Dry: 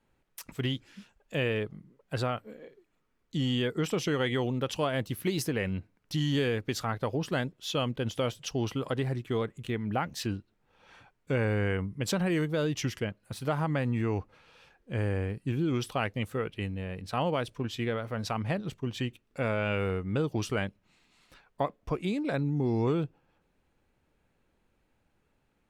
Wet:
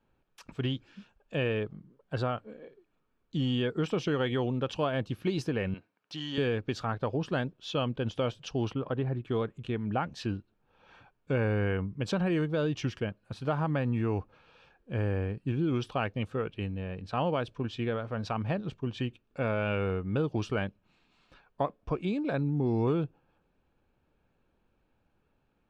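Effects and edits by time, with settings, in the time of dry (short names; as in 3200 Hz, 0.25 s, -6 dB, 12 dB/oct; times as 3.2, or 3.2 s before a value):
1.78–2.42 notch 2500 Hz, Q 14
5.74–6.38 weighting filter A
8.73–9.25 air absorption 300 m
whole clip: Bessel low-pass 3300 Hz, order 2; notch 2000 Hz, Q 6.5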